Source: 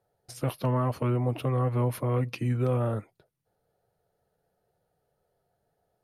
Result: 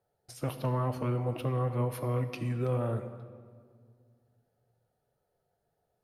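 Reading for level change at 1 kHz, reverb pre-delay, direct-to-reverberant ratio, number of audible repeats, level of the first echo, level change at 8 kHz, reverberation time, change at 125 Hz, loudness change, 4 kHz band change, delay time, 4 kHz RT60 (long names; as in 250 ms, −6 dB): −3.5 dB, 16 ms, 9.0 dB, no echo audible, no echo audible, −3.5 dB, 1.9 s, −4.0 dB, −4.0 dB, −3.5 dB, no echo audible, 1.3 s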